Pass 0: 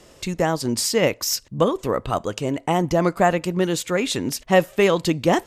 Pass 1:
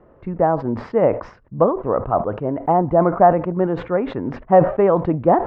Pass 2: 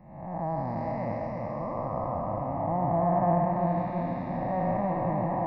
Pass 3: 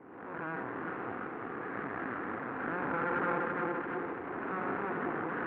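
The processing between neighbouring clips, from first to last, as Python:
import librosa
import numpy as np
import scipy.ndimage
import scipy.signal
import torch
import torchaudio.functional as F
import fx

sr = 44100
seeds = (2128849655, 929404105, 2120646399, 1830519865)

y1 = scipy.signal.sosfilt(scipy.signal.butter(4, 1400.0, 'lowpass', fs=sr, output='sos'), x)
y1 = fx.dynamic_eq(y1, sr, hz=720.0, q=1.5, threshold_db=-33.0, ratio=4.0, max_db=7)
y1 = fx.sustainer(y1, sr, db_per_s=130.0)
y2 = fx.spec_blur(y1, sr, span_ms=386.0)
y2 = fx.fixed_phaser(y2, sr, hz=2100.0, stages=8)
y2 = fx.echo_feedback(y2, sr, ms=339, feedback_pct=57, wet_db=-3.5)
y2 = y2 * 10.0 ** (-3.5 / 20.0)
y3 = np.abs(y2)
y3 = fx.cabinet(y3, sr, low_hz=220.0, low_slope=12, high_hz=2000.0, hz=(270.0, 600.0, 880.0), db=(5, -9, -7))
y3 = fx.pre_swell(y3, sr, db_per_s=41.0)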